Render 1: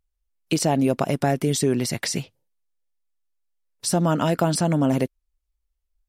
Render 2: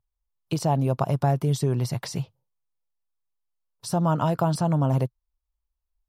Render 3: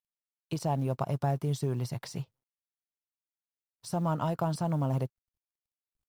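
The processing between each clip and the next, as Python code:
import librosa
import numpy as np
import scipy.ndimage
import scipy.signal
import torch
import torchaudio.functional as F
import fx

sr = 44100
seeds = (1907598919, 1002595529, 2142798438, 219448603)

y1 = fx.graphic_eq(x, sr, hz=(125, 250, 1000, 2000, 8000), db=(12, -6, 9, -8, -6))
y1 = F.gain(torch.from_numpy(y1), -5.5).numpy()
y2 = fx.law_mismatch(y1, sr, coded='A')
y2 = F.gain(torch.from_numpy(y2), -6.5).numpy()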